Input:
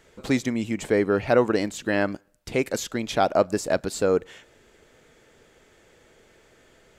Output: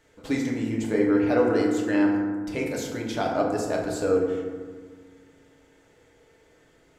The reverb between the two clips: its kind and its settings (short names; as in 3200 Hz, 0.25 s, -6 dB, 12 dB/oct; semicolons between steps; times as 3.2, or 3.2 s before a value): FDN reverb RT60 1.6 s, low-frequency decay 1.4×, high-frequency decay 0.4×, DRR -2.5 dB; gain -7.5 dB